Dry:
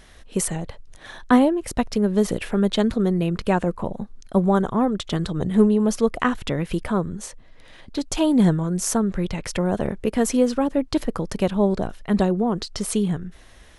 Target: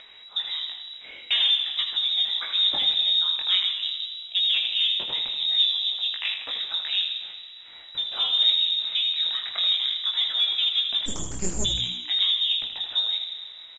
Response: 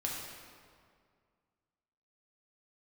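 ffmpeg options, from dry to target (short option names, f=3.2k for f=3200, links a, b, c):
-filter_complex "[0:a]asettb=1/sr,asplit=3[a][b][c];[a]atrim=end=5.634[d];[b]atrim=start=5.63:end=6.69,asetpts=PTS-STARTPTS,afade=t=in:d=0.004:c=qsin,afade=t=out:st=1.056:d=0.004:c=qsin,tremolo=f=200:d=0.974[e];[c]atrim=start=6.686[f];[d][e]acrossfade=d=0.004:c1=hsin:c2=qsin[g];[g][f]acrossfade=d=0.004:c1=qsin:c2=hsin,flanger=delay=17.5:depth=5.4:speed=0.47,asoftclip=type=tanh:threshold=-15dB,asplit=2[h][i];[1:a]atrim=start_sample=2205,adelay=27[j];[i][j]afir=irnorm=-1:irlink=0,volume=-11dB[k];[h][k]amix=inputs=2:normalize=0,acrusher=bits=10:mix=0:aa=0.000001,lowpass=f=3.3k:t=q:w=0.5098,lowpass=f=3.3k:t=q:w=0.6013,lowpass=f=3.3k:t=q:w=0.9,lowpass=f=3.3k:t=q:w=2.563,afreqshift=-3900,asplit=3[l][m][n];[l]afade=t=out:st=11.05:d=0.02[o];[m]aeval=exprs='abs(val(0))':c=same,afade=t=in:st=11.05:d=0.02,afade=t=out:st=11.64:d=0.02[p];[n]afade=t=in:st=11.64:d=0.02[q];[o][p][q]amix=inputs=3:normalize=0,asplit=2[r][s];[s]asplit=6[t][u][v][w][x][y];[t]adelay=80,afreqshift=-61,volume=-9dB[z];[u]adelay=160,afreqshift=-122,volume=-15dB[aa];[v]adelay=240,afreqshift=-183,volume=-21dB[ab];[w]adelay=320,afreqshift=-244,volume=-27.1dB[ac];[x]adelay=400,afreqshift=-305,volume=-33.1dB[ad];[y]adelay=480,afreqshift=-366,volume=-39.1dB[ae];[z][aa][ab][ac][ad][ae]amix=inputs=6:normalize=0[af];[r][af]amix=inputs=2:normalize=0,acompressor=mode=upward:threshold=-43dB:ratio=2.5" -ar 16000 -c:a pcm_mulaw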